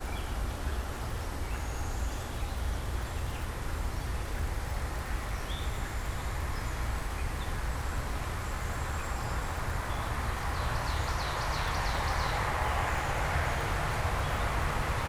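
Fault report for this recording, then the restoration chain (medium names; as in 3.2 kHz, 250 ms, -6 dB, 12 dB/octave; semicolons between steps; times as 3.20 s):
crackle 52 per s -36 dBFS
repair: de-click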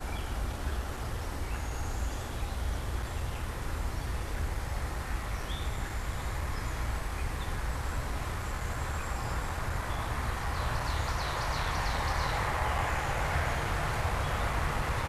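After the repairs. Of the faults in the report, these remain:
nothing left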